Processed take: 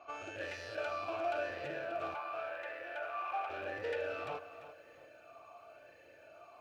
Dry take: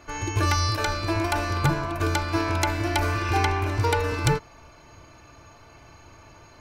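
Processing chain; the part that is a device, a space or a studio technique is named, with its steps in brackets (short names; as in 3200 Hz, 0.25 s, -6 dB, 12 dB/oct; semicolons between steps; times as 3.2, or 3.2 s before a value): talk box (tube stage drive 29 dB, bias 0.4; vowel sweep a-e 0.91 Hz); 2.14–3.5 three-band isolator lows -19 dB, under 540 Hz, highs -12 dB, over 2700 Hz; lo-fi delay 0.343 s, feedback 35%, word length 12-bit, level -13.5 dB; gain +6 dB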